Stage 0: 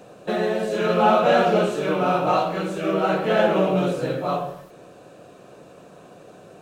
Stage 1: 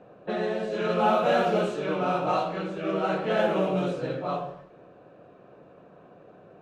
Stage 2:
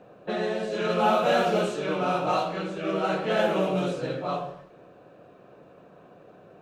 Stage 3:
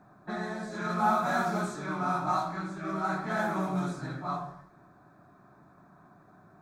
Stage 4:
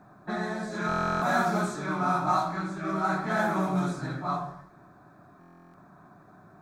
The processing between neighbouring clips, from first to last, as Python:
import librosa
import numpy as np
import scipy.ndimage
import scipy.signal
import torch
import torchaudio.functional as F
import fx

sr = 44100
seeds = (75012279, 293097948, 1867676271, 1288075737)

y1 = fx.env_lowpass(x, sr, base_hz=1900.0, full_db=-13.5)
y1 = F.gain(torch.from_numpy(y1), -5.5).numpy()
y2 = fx.high_shelf(y1, sr, hz=3800.0, db=8.0)
y3 = fx.fixed_phaser(y2, sr, hz=1200.0, stages=4)
y4 = fx.buffer_glitch(y3, sr, at_s=(0.87, 5.39), block=1024, repeats=14)
y4 = F.gain(torch.from_numpy(y4), 3.5).numpy()